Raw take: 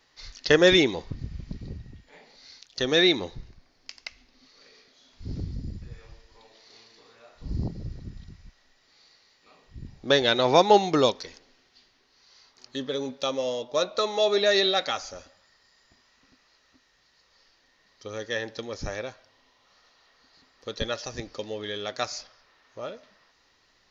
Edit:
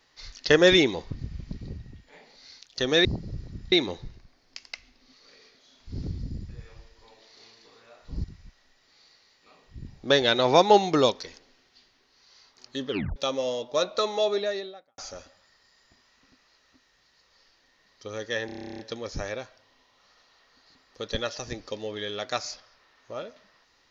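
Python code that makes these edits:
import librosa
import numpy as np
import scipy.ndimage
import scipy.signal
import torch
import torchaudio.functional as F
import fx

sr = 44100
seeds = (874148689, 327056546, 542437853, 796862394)

y = fx.studio_fade_out(x, sr, start_s=13.98, length_s=1.0)
y = fx.edit(y, sr, fx.move(start_s=7.57, length_s=0.67, to_s=3.05),
    fx.tape_stop(start_s=12.89, length_s=0.27),
    fx.stutter(start_s=18.46, slice_s=0.03, count=12), tone=tone)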